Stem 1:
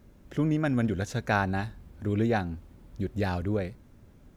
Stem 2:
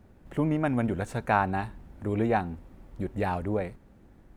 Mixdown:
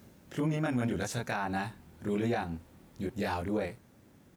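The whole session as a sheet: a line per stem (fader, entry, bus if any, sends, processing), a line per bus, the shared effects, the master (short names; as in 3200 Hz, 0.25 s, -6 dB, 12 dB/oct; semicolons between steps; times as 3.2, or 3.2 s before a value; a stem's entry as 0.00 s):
+1.5 dB, 0.00 s, no send, auto duck -7 dB, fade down 0.40 s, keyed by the second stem
-4.5 dB, 25 ms, no send, dry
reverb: off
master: HPF 98 Hz 12 dB/oct; high shelf 2700 Hz +8.5 dB; limiter -22 dBFS, peak gain reduction 12 dB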